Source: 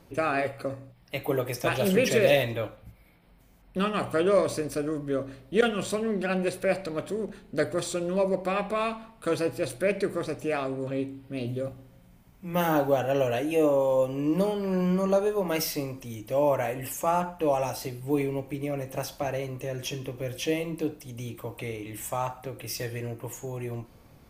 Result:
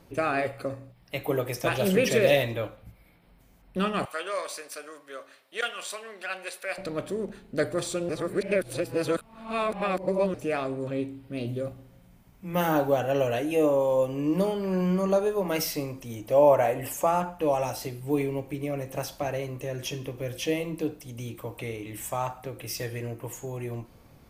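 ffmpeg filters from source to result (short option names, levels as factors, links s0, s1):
-filter_complex "[0:a]asettb=1/sr,asplit=3[s0][s1][s2];[s0]atrim=end=4.054[s3];[s1]atrim=start=4.05:end=6.78,asetpts=PTS-STARTPTS,afade=t=in:d=0.004:c=qsin,afade=t=out:st=2.726:d=0.004:c=qsin,highpass=1000[s4];[s2]atrim=start=6.776[s5];[s3][s4]acrossfade=d=0.004:c1=hsin:c2=qsin[s6];[s6][s5]acrossfade=d=0.004:c1=qsin:c2=hsin,asettb=1/sr,asplit=3[s7][s8][s9];[s7]atrim=end=16.094[s10];[s8]atrim=start=16.09:end=17.07,asetpts=PTS-STARTPTS,afade=t=in:d=0.004:c=qsin,afade=t=out:st=0.976:d=0.004:c=qsin,equalizer=f=680:t=o:w=1.4:g=6.5[s11];[s9]atrim=start=17.066[s12];[s10][s11]acrossfade=d=0.004:c1=hsin:c2=qsin[s13];[s13][s12]acrossfade=d=0.004:c1=qsin:c2=hsin,asplit=3[s14][s15][s16];[s14]atrim=end=8.092[s17];[s15]atrim=start=8.088:end=10.342,asetpts=PTS-STARTPTS,areverse[s18];[s16]atrim=start=10.338[s19];[s17][s18]acrossfade=d=0.004:c1=hsin:c2=hsin[s20];[s20][s19]acrossfade=d=0.004:c1=hsin:c2=hsin"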